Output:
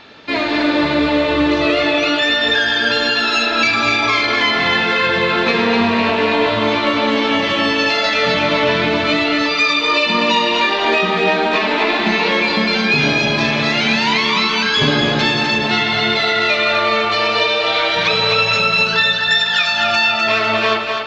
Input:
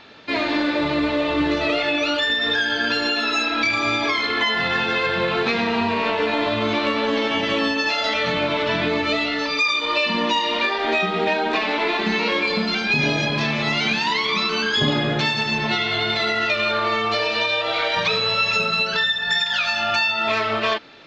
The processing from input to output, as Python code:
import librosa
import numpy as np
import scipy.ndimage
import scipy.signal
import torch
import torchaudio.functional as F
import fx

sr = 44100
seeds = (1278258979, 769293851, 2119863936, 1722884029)

p1 = x + fx.echo_split(x, sr, split_hz=500.0, low_ms=188, high_ms=251, feedback_pct=52, wet_db=-4.5, dry=0)
y = p1 * 10.0 ** (4.0 / 20.0)